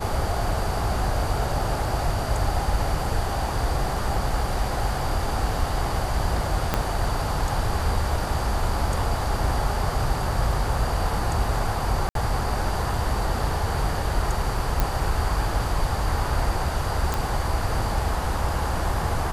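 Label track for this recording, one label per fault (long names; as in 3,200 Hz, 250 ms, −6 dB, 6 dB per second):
6.740000	6.740000	click −7 dBFS
12.090000	12.150000	drop-out 62 ms
14.800000	14.800000	click
17.140000	17.140000	click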